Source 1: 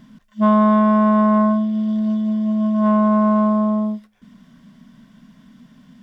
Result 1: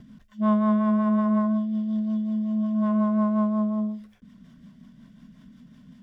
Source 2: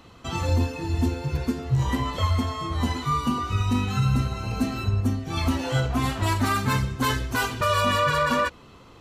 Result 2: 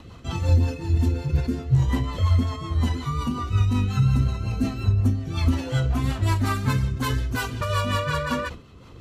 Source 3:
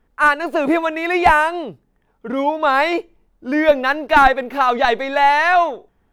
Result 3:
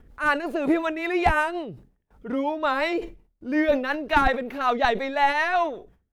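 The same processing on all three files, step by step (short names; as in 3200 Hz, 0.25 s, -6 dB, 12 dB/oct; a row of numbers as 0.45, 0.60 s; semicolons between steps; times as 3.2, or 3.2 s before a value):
upward compressor, threshold -37 dBFS; bell 67 Hz +8 dB 2.6 oct; rotary speaker horn 5.5 Hz; gate with hold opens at -45 dBFS; sustainer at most 130 dB/s; match loudness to -24 LUFS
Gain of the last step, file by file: -7.5, -1.5, -5.0 dB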